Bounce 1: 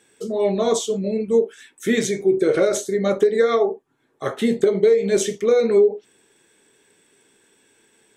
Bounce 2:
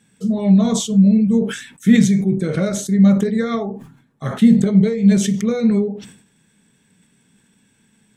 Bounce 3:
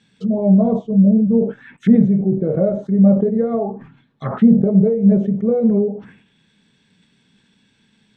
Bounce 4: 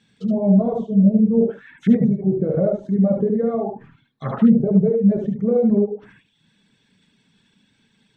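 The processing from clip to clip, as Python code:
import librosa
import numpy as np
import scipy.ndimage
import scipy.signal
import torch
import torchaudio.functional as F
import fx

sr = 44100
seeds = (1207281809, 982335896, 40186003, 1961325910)

y1 = fx.low_shelf_res(x, sr, hz=270.0, db=11.0, q=3.0)
y1 = fx.sustainer(y1, sr, db_per_s=93.0)
y1 = F.gain(torch.from_numpy(y1), -2.5).numpy()
y2 = fx.envelope_lowpass(y1, sr, base_hz=620.0, top_hz=4300.0, q=2.4, full_db=-17.5, direction='down')
y2 = F.gain(torch.from_numpy(y2), -1.0).numpy()
y3 = y2 + 10.0 ** (-3.0 / 20.0) * np.pad(y2, (int(74 * sr / 1000.0), 0))[:len(y2)]
y3 = fx.dereverb_blind(y3, sr, rt60_s=0.57)
y3 = F.gain(torch.from_numpy(y3), -2.5).numpy()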